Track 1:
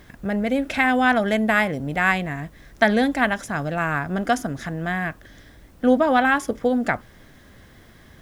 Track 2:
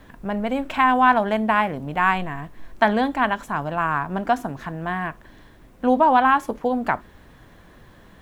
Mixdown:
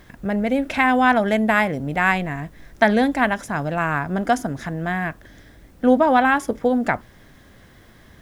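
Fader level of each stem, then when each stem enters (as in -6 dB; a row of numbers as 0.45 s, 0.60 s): -0.5 dB, -9.5 dB; 0.00 s, 0.00 s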